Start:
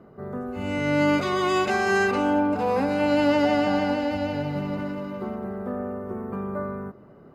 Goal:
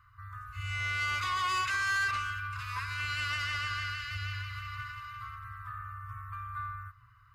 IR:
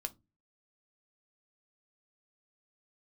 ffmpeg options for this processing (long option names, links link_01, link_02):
-filter_complex "[0:a]asettb=1/sr,asplit=3[link_01][link_02][link_03];[link_01]atrim=end=4.214[link_04];[link_02]atrim=start=4.21:end=6.33,asetpts=PTS-STARTPTS,afade=type=in:duration=0.004:curve=qsin,afade=type=out:start_time=2.116:duration=0.004:curve=qsin,equalizer=frequency=610:width=0.39:gain=2.5[link_05];[link_03]atrim=start=6.326[link_06];[link_04][link_05]acrossfade=duration=0.004:curve1=hsin:curve2=qsin[link_07];[link_07][link_06]acrossfade=duration=0.004:curve1=qsin:curve2=hsin,afftfilt=real='re*(1-between(b*sr/4096,120,1000))':imag='im*(1-between(b*sr/4096,120,1000))':win_size=4096:overlap=0.75,asoftclip=type=tanh:threshold=-26dB"